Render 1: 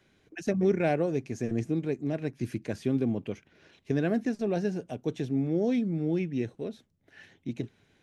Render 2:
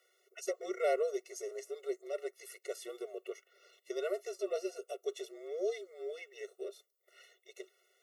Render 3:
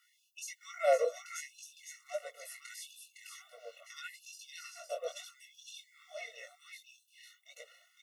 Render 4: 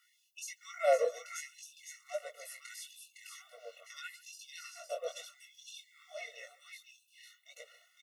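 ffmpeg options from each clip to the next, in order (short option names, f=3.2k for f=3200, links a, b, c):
-af "afreqshift=-47,aemphasis=mode=production:type=50fm,afftfilt=real='re*eq(mod(floor(b*sr/1024/370),2),1)':imag='im*eq(mod(floor(b*sr/1024/370),2),1)':win_size=1024:overlap=0.75,volume=-2dB"
-filter_complex "[0:a]flanger=delay=18:depth=6.6:speed=1.3,asplit=2[a][b];[b]aecho=0:1:509:0.531[c];[a][c]amix=inputs=2:normalize=0,afftfilt=real='re*gte(b*sr/1024,440*pow(2600/440,0.5+0.5*sin(2*PI*0.75*pts/sr)))':imag='im*gte(b*sr/1024,440*pow(2600/440,0.5+0.5*sin(2*PI*0.75*pts/sr)))':win_size=1024:overlap=0.75,volume=6dB"
-filter_complex "[0:a]asplit=2[a][b];[b]adelay=140,highpass=300,lowpass=3.4k,asoftclip=type=hard:threshold=-25.5dB,volume=-20dB[c];[a][c]amix=inputs=2:normalize=0"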